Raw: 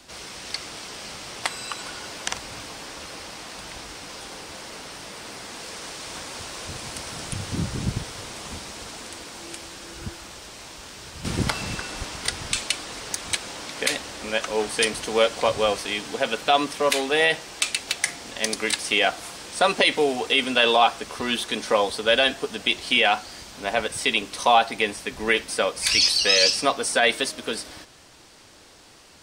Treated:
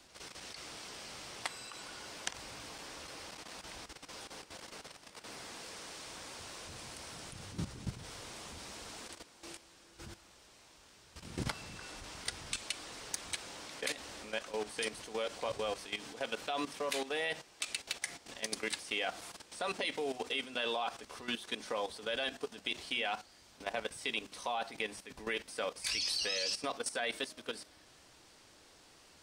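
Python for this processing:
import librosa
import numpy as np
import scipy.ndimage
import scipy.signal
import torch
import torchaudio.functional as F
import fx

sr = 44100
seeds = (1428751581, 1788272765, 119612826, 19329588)

y = fx.hum_notches(x, sr, base_hz=50, count=5)
y = fx.level_steps(y, sr, step_db=13)
y = y * librosa.db_to_amplitude(-9.0)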